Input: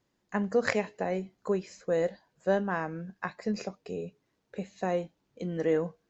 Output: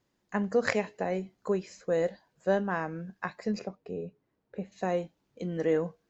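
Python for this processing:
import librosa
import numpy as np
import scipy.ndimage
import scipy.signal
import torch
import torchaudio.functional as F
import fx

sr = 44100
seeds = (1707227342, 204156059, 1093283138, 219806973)

y = fx.lowpass(x, sr, hz=1200.0, slope=6, at=(3.59, 4.72))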